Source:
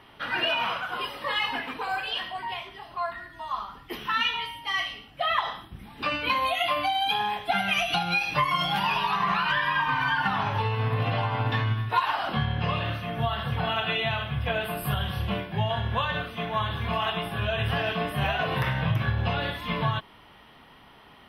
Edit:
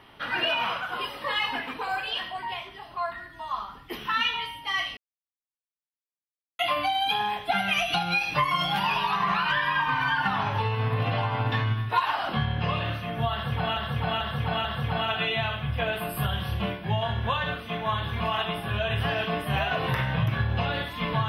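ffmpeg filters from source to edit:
ffmpeg -i in.wav -filter_complex "[0:a]asplit=6[link_01][link_02][link_03][link_04][link_05][link_06];[link_01]atrim=end=4.97,asetpts=PTS-STARTPTS,afade=type=out:start_time=4.966:duration=0.004:curve=hsin[link_07];[link_02]atrim=start=4.97:end=6.59,asetpts=PTS-STARTPTS,volume=0[link_08];[link_03]atrim=start=6.59:end=13.772,asetpts=PTS-STARTPTS,afade=type=in:duration=0.004:curve=hsin[link_09];[link_04]atrim=start=13.328:end=13.772[link_10];[link_05]atrim=start=13.328:end=13.772[link_11];[link_06]atrim=start=13.328[link_12];[link_07][link_08][link_09]concat=n=3:v=0:a=1[link_13];[link_13][link_10]acrossfade=duration=0.004:curve1=hsin:curve2=hsin[link_14];[link_14][link_11]acrossfade=duration=0.004:curve1=hsin:curve2=hsin[link_15];[link_15][link_12]acrossfade=duration=0.004:curve1=hsin:curve2=hsin" out.wav

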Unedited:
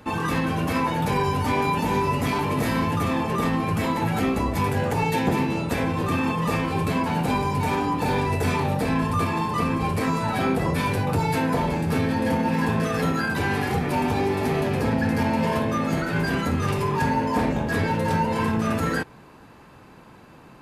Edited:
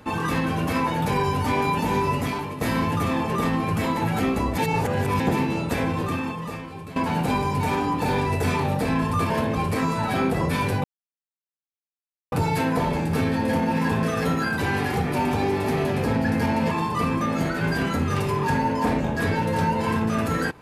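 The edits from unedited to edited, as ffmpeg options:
ffmpeg -i in.wav -filter_complex "[0:a]asplit=10[link_01][link_02][link_03][link_04][link_05][link_06][link_07][link_08][link_09][link_10];[link_01]atrim=end=2.61,asetpts=PTS-STARTPTS,afade=type=out:start_time=2.13:duration=0.48:silence=0.251189[link_11];[link_02]atrim=start=2.61:end=4.582,asetpts=PTS-STARTPTS,afade=type=in:duration=0.004:curve=hsin:silence=0.251189[link_12];[link_03]atrim=start=4.578:end=5.202,asetpts=PTS-STARTPTS,areverse[link_13];[link_04]atrim=start=5.198:end=6.96,asetpts=PTS-STARTPTS,afade=type=out:start_time=0.742:duration=1.02:curve=qua:silence=0.199526[link_14];[link_05]atrim=start=6.96:end=9.302,asetpts=PTS-STARTPTS,afade=type=in:duration=0.004:curve=hsin:silence=0.199526[link_15];[link_06]atrim=start=15.478:end=15.732[link_16];[link_07]atrim=start=9.798:end=11.09,asetpts=PTS-STARTPTS,afade=type=out:start_time=1.288:duration=0.004:curve=hsin,apad=pad_dur=1.48[link_17];[link_08]atrim=start=11.09:end=15.482,asetpts=PTS-STARTPTS,afade=type=in:duration=0.004:curve=hsin[link_18];[link_09]atrim=start=9.298:end=9.802[link_19];[link_10]atrim=start=15.728[link_20];[link_11][link_12]concat=n=2:v=0:a=1[link_21];[link_21][link_13]acrossfade=duration=0.004:curve1=hsin:curve2=hsin[link_22];[link_14][link_15]concat=n=2:v=0:a=1[link_23];[link_22][link_23]acrossfade=duration=0.004:curve1=hsin:curve2=hsin[link_24];[link_24][link_16]acrossfade=duration=0.004:curve1=hsin:curve2=hsin[link_25];[link_17][link_18]concat=n=2:v=0:a=1[link_26];[link_25][link_26]acrossfade=duration=0.004:curve1=hsin:curve2=hsin[link_27];[link_27][link_19]acrossfade=duration=0.004:curve1=hsin:curve2=hsin[link_28];[link_28][link_20]acrossfade=duration=0.004:curve1=hsin:curve2=hsin" out.wav

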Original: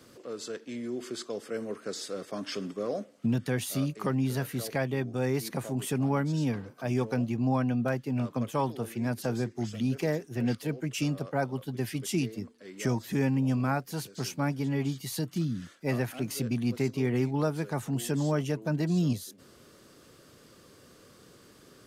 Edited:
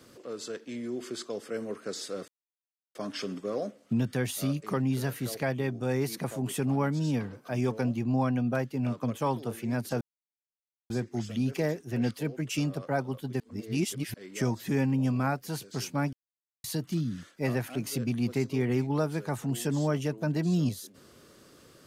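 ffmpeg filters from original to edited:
ffmpeg -i in.wav -filter_complex "[0:a]asplit=7[link_01][link_02][link_03][link_04][link_05][link_06][link_07];[link_01]atrim=end=2.28,asetpts=PTS-STARTPTS,afade=type=out:start_time=2.276:duration=0.004:curve=hsin,apad=pad_dur=0.67[link_08];[link_02]atrim=start=2.28:end=9.34,asetpts=PTS-STARTPTS,afade=type=in:duration=0.004:curve=hsin,afade=type=out:start_time=7.056:duration=0.004:curve=hsin,apad=pad_dur=0.89[link_09];[link_03]atrim=start=9.34:end=11.842,asetpts=PTS-STARTPTS,afade=type=in:duration=0.004:curve=hsin[link_10];[link_04]atrim=start=11.838:end=12.582,asetpts=PTS-STARTPTS,areverse[link_11];[link_05]atrim=start=12.578:end=14.57,asetpts=PTS-STARTPTS,afade=type=out:start_time=1.988:duration=0.004:curve=hsin[link_12];[link_06]atrim=start=14.57:end=15.08,asetpts=PTS-STARTPTS,volume=0[link_13];[link_07]atrim=start=15.08,asetpts=PTS-STARTPTS,afade=type=in:duration=0.004:curve=hsin[link_14];[link_08][link_09][link_10]concat=n=3:v=0:a=1[link_15];[link_15][link_11]acrossfade=duration=0.004:curve1=hsin:curve2=hsin[link_16];[link_12][link_13][link_14]concat=n=3:v=0:a=1[link_17];[link_16][link_17]acrossfade=duration=0.004:curve1=hsin:curve2=hsin" out.wav

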